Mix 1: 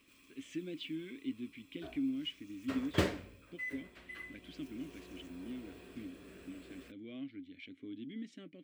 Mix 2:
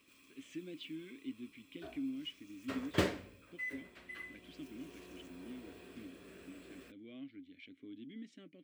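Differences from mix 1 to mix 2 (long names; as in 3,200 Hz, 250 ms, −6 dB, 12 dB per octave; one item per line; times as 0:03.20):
speech −4.0 dB
master: add high-pass filter 95 Hz 6 dB per octave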